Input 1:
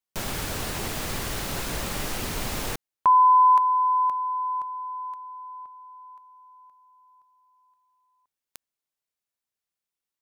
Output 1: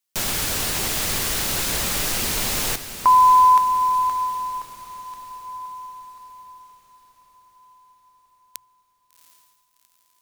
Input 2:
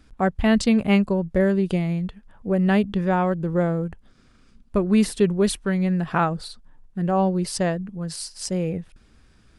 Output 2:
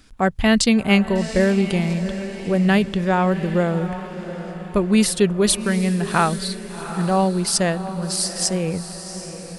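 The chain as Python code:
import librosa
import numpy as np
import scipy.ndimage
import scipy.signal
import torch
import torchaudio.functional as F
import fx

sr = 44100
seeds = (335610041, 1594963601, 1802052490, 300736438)

p1 = fx.high_shelf(x, sr, hz=2200.0, db=9.5)
p2 = fx.hum_notches(p1, sr, base_hz=60, count=2)
p3 = p2 + fx.echo_diffused(p2, sr, ms=744, feedback_pct=49, wet_db=-11.5, dry=0)
y = p3 * librosa.db_to_amplitude(1.5)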